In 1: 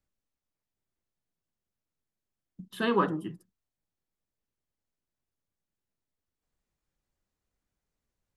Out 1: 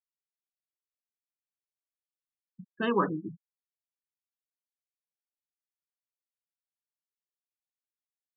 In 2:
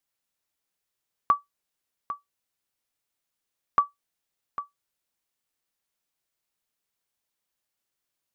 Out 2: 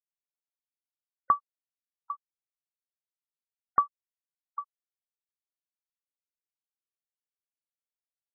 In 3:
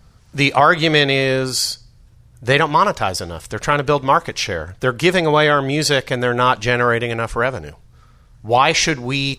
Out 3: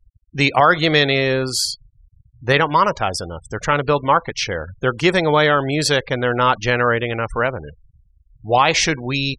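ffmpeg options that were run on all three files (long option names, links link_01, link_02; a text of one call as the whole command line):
ffmpeg -i in.wav -af "anlmdn=0.1,afftfilt=real='re*gte(hypot(re,im),0.0316)':imag='im*gte(hypot(re,im),0.0316)':win_size=1024:overlap=0.75,volume=-1dB" out.wav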